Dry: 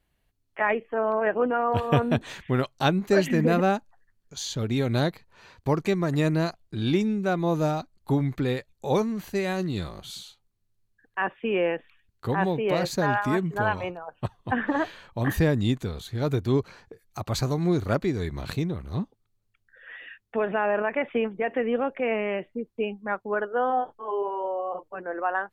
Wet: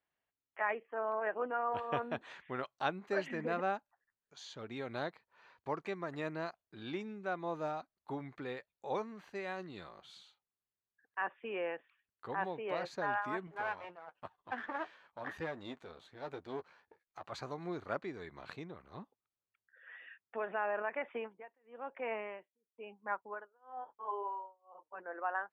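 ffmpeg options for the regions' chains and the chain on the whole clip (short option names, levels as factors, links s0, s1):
-filter_complex "[0:a]asettb=1/sr,asplit=3[s0][s1][s2];[s0]atrim=end=13.474[s3];[s1]atrim=start=13.47:end=17.32,asetpts=PTS-STARTPTS,afade=t=in:d=0.004:c=qsin,afade=t=out:st=3.846:d=0.004:c=qsin,aeval=exprs='if(lt(val(0),0),0.251*val(0),val(0))':c=same,asplit=2[s4][s5];[s5]adelay=12,volume=0.335[s6];[s4][s6]amix=inputs=2:normalize=0,atrim=end_sample=169785[s7];[s2]atrim=start=17.316[s8];[s3][s7]acrossfade=d=0.004:c1=hsin:c2=qsin[s9];[s9][s8]acrossfade=d=0.004:c1=qsin:c2=hsin,asettb=1/sr,asplit=3[s10][s11][s12];[s10]atrim=end=21.094[s13];[s11]atrim=start=21.09:end=25,asetpts=PTS-STARTPTS,afade=t=in:d=0.004:c=qsin,afade=t=out:st=3.906:d=0.004:c=qsin,equalizer=f=950:t=o:w=0.22:g=8.5,tremolo=f=1:d=0.99[s14];[s12]atrim=start=24.996[s15];[s13][s14]acrossfade=d=0.004:c1=hsin:c2=qsin[s16];[s16][s15]acrossfade=d=0.004:c1=qsin:c2=hsin,lowpass=1200,aderivative,volume=3.16"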